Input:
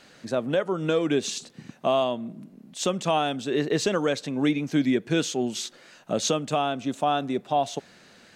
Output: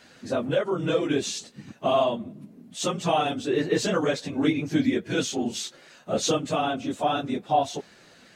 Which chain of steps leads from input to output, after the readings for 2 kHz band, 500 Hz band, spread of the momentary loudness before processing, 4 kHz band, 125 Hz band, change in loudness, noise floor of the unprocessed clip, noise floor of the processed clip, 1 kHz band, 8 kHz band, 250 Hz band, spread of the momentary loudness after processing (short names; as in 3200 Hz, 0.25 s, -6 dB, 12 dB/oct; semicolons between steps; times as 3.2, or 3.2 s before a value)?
0.0 dB, 0.0 dB, 10 LU, 0.0 dB, 0.0 dB, 0.0 dB, -54 dBFS, -54 dBFS, +0.5 dB, 0.0 dB, -0.5 dB, 11 LU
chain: phase scrambler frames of 50 ms